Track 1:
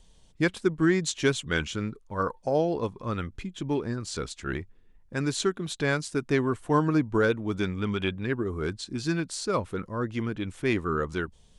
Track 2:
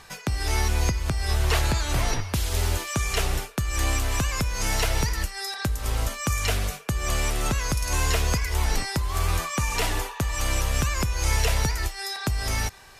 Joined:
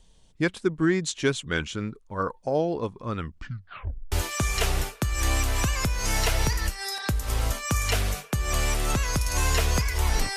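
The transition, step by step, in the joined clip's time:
track 1
3.18 tape stop 0.94 s
4.12 switch to track 2 from 2.68 s

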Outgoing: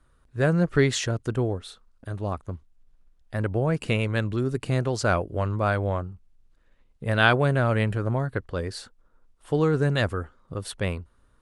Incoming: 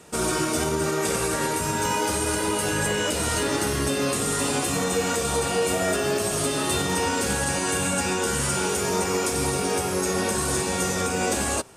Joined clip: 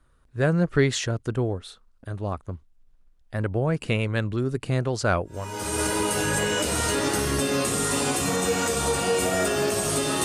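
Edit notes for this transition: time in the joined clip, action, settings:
outgoing
5.5 switch to incoming from 1.98 s, crossfade 0.60 s quadratic

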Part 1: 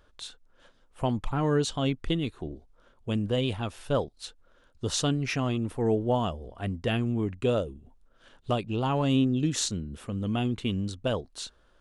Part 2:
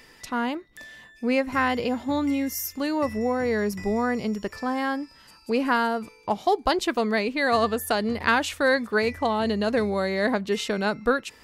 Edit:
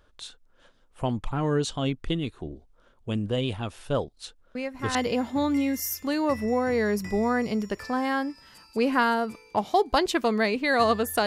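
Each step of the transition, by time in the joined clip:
part 1
4.55 add part 2 from 1.28 s 0.40 s -9.5 dB
4.95 switch to part 2 from 1.68 s

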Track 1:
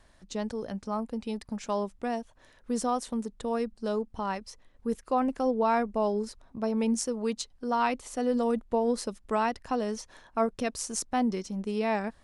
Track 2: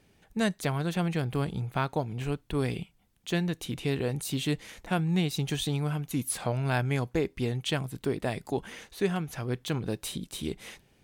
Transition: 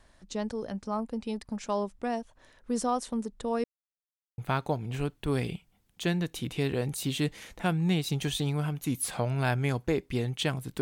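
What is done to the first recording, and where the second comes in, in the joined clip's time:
track 1
3.64–4.38 mute
4.38 switch to track 2 from 1.65 s

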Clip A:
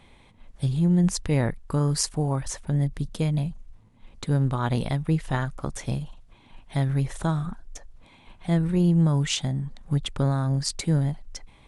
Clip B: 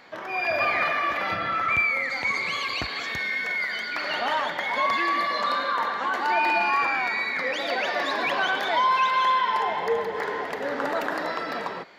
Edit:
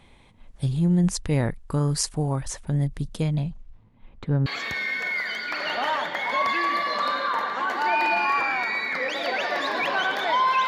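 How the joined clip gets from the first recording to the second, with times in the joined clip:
clip A
3.22–4.46 LPF 7700 Hz -> 1700 Hz
4.46 switch to clip B from 2.9 s

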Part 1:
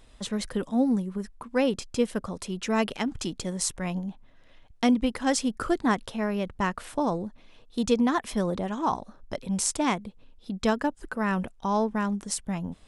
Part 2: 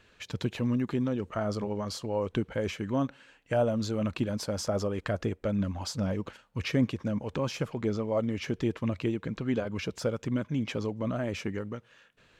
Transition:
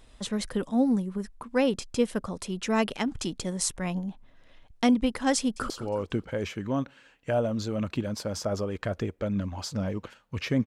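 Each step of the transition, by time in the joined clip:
part 1
5.38–5.7 echo throw 0.18 s, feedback 50%, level -14.5 dB
5.7 switch to part 2 from 1.93 s

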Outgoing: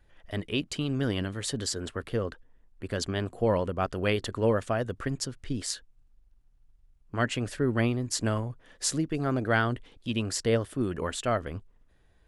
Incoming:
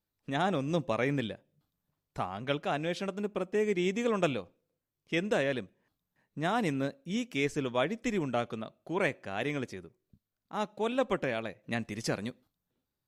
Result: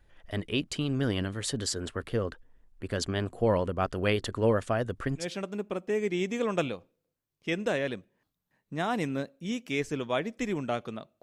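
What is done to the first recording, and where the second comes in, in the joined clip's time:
outgoing
5.22 switch to incoming from 2.87 s, crossfade 0.12 s

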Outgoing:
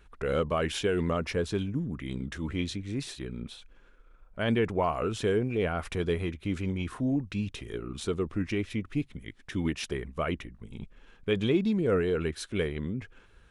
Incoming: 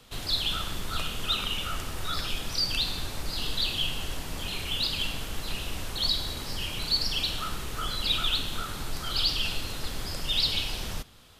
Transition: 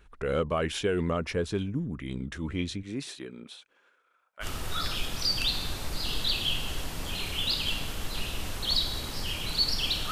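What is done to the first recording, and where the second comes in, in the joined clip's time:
outgoing
2.82–4.46 HPF 140 Hz -> 1200 Hz
4.43 switch to incoming from 1.76 s, crossfade 0.06 s

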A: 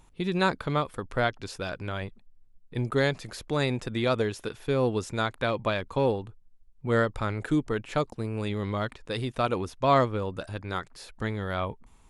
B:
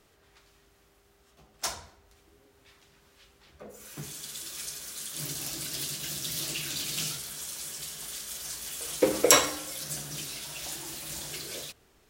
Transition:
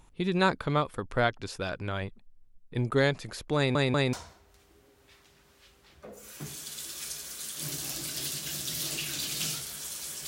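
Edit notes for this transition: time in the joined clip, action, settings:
A
3.56 stutter in place 0.19 s, 3 plays
4.13 switch to B from 1.7 s

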